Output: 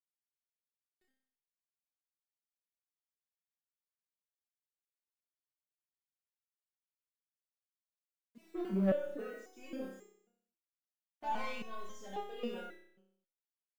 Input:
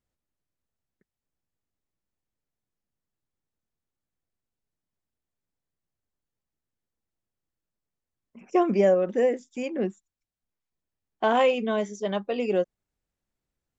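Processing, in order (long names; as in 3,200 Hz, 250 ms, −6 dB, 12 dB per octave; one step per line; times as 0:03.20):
0:08.41–0:09.33: low-pass filter 2,000 Hz 12 dB per octave
in parallel at −1 dB: downward compressor 4 to 1, threshold −32 dBFS, peak gain reduction 13.5 dB
on the sum: soft clipping −18.5 dBFS, distortion −12 dB
bit reduction 9 bits
on a send: flutter between parallel walls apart 5.3 metres, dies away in 0.7 s
on the sum: step-sequenced resonator 3.7 Hz 190–410 Hz
level −2.5 dB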